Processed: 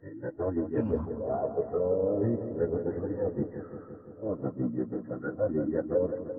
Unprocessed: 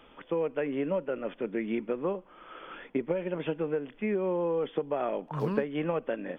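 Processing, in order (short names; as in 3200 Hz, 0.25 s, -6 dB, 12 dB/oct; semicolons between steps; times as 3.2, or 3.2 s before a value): whole clip reversed; formant-preserving pitch shift -10.5 st; analogue delay 0.171 s, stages 2048, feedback 80%, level -7.5 dB; spectral expander 1.5:1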